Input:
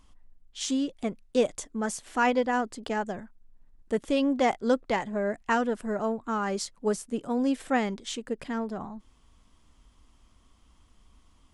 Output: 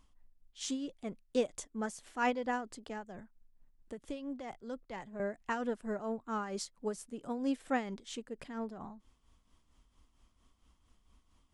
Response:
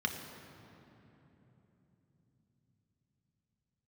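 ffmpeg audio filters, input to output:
-filter_complex "[0:a]asettb=1/sr,asplit=3[link_01][link_02][link_03];[link_01]atrim=end=2.764[link_04];[link_02]atrim=start=2.76:end=5.2,asetpts=PTS-STARTPTS,afade=type=in:duration=0.004:curve=qsin,afade=type=out:start_time=2.436:duration=0.004:curve=qsin,acrossover=split=140[link_05][link_06];[link_06]acompressor=threshold=-35dB:ratio=2.5[link_07];[link_05][link_07]amix=inputs=2:normalize=0[link_08];[link_03]atrim=start=5.196[link_09];[link_04][link_08]acrossfade=duration=0.004:curve1=hsin:curve2=qsin[link_10];[link_10][link_09]acrossfade=duration=0.004:curve1=qsin:curve2=hsin,tremolo=f=4.4:d=0.57,volume=-6dB"

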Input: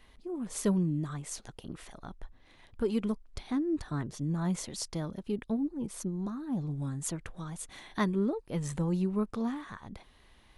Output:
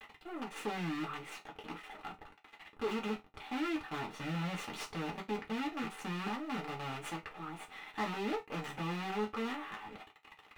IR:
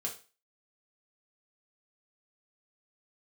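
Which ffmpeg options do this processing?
-filter_complex "[0:a]asettb=1/sr,asplit=3[link_01][link_02][link_03];[link_01]atrim=end=4.114[link_04];[link_02]atrim=start=4.11:end=6.4,asetpts=PTS-STARTPTS,afade=type=in:duration=0.004:curve=qsin,afade=type=out:start_time=2.286:duration=0.004:curve=qsin,bass=frequency=250:gain=6,treble=frequency=4000:gain=3[link_05];[link_03]atrim=start=6.396[link_06];[link_04][link_05]acrossfade=duration=0.004:curve1=hsin:curve2=qsin[link_07];[link_07][link_06]acrossfade=duration=0.004:curve1=qsin:curve2=hsin,acrusher=bits=6:dc=4:mix=0:aa=0.000001,highshelf=frequency=3900:width_type=q:width=1.5:gain=-8,asoftclip=type=tanh:threshold=-33.5dB[link_08];[1:a]atrim=start_sample=2205,afade=type=out:start_time=0.25:duration=0.01,atrim=end_sample=11466,asetrate=79380,aresample=44100[link_09];[link_08][link_09]afir=irnorm=-1:irlink=0,asplit=2[link_10][link_11];[link_11]highpass=frequency=720:poles=1,volume=14dB,asoftclip=type=tanh:threshold=-28dB[link_12];[link_10][link_12]amix=inputs=2:normalize=0,lowpass=frequency=2500:poles=1,volume=-6dB,volume=3.5dB"

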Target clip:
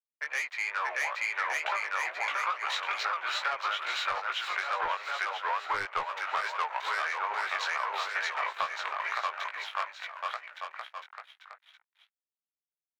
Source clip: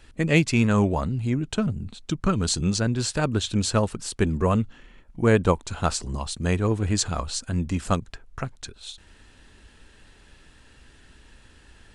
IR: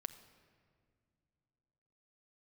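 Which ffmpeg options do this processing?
-filter_complex "[0:a]highpass=180,lowpass=6400,aeval=exprs='sgn(val(0))*max(abs(val(0))-0.0106,0)':channel_layout=same,acrossover=split=510 2500:gain=0.112 1 0.0631[link_01][link_02][link_03];[link_01][link_02][link_03]amix=inputs=3:normalize=0,asetrate=40517,aresample=44100,equalizer=frequency=250:width_type=o:width=1:gain=-4,equalizer=frequency=2000:width_type=o:width=1:gain=7,equalizer=frequency=4000:width_type=o:width=1:gain=3,aeval=exprs='(tanh(11.2*val(0)+0.3)-tanh(0.3))/11.2':channel_layout=same,acrossover=split=710[link_04][link_05];[link_04]acrusher=bits=3:mix=0:aa=0.5[link_06];[link_05]aecho=1:1:630|1166|1621|2008|2336:0.631|0.398|0.251|0.158|0.1[link_07];[link_06][link_07]amix=inputs=2:normalize=0,dynaudnorm=framelen=130:gausssize=17:maxgain=12dB,alimiter=limit=-12dB:level=0:latency=1:release=239,flanger=delay=16.5:depth=4.6:speed=2.3,acompressor=threshold=-30dB:ratio=6,volume=2.5dB"

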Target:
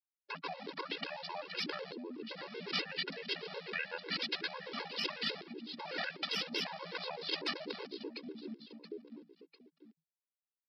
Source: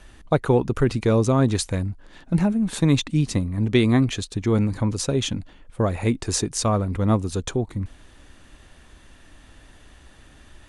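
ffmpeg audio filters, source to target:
ffmpeg -i in.wav -af "aresample=16000,aeval=exprs='val(0)*gte(abs(val(0)),0.0211)':channel_layout=same,aresample=44100,acompressor=threshold=-29dB:ratio=12,lowshelf=frequency=410:gain=3,aecho=1:1:684|1368|2052:0.112|0.046|0.0189,asoftclip=type=tanh:threshold=-20dB,asetrate=29433,aresample=44100,atempo=1.49831,equalizer=frequency=125:width_type=o:width=1:gain=5,equalizer=frequency=250:width_type=o:width=1:gain=10,equalizer=frequency=500:width_type=o:width=1:gain=-4,equalizer=frequency=2000:width_type=o:width=1:gain=6,equalizer=frequency=4000:width_type=o:width=1:gain=9,afftfilt=real='re*lt(hypot(re,im),0.0708)':imag='im*lt(hypot(re,im),0.0708)':win_size=1024:overlap=0.75,afreqshift=160,afftfilt=real='re*gt(sin(2*PI*8*pts/sr)*(1-2*mod(floor(b*sr/1024/280),2)),0)':imag='im*gt(sin(2*PI*8*pts/sr)*(1-2*mod(floor(b*sr/1024/280),2)),0)':win_size=1024:overlap=0.75,volume=5dB" out.wav

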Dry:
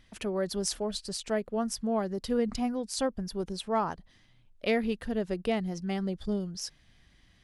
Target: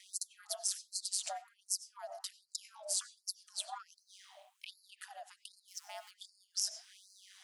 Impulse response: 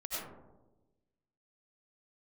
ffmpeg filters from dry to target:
-filter_complex "[0:a]asettb=1/sr,asplit=3[link_01][link_02][link_03];[link_01]atrim=end=5.684[link_04];[link_02]atrim=start=5.68:end=6.11,asetpts=PTS-STARTPTS,afade=type=in:duration=0.004:curve=qsin,afade=type=out:start_time=0.426:duration=0.004:curve=qsin,aeval=exprs='val(0)+0.5*0.00531*sgn(val(0))':channel_layout=same[link_05];[link_03]atrim=start=6.106[link_06];[link_04][link_05]acrossfade=duration=0.004:curve1=hsin:curve2=qsin[link_07];[link_07][link_06]acrossfade=duration=0.004:curve1=qsin:curve2=hsin,acompressor=threshold=-30dB:ratio=6,aeval=exprs='val(0)*sin(2*PI*96*n/s)':channel_layout=same,equalizer=frequency=500:width_type=o:width=1:gain=7,equalizer=frequency=1000:width_type=o:width=1:gain=-9,equalizer=frequency=2000:width_type=o:width=1:gain=-9,equalizer=frequency=4000:width_type=o:width=1:gain=-5,equalizer=frequency=8000:width_type=o:width=1:gain=4,asplit=2[link_08][link_09];[1:a]atrim=start_sample=2205,lowpass=6500[link_10];[link_09][link_10]afir=irnorm=-1:irlink=0,volume=-12.5dB[link_11];[link_08][link_11]amix=inputs=2:normalize=0,acrossover=split=220[link_12][link_13];[link_13]acompressor=threshold=-51dB:ratio=3[link_14];[link_12][link_14]amix=inputs=2:normalize=0,afftfilt=real='re*gte(b*sr/1024,560*pow(4100/560,0.5+0.5*sin(2*PI*1.3*pts/sr)))':imag='im*gte(b*sr/1024,560*pow(4100/560,0.5+0.5*sin(2*PI*1.3*pts/sr)))':win_size=1024:overlap=0.75,volume=17dB"

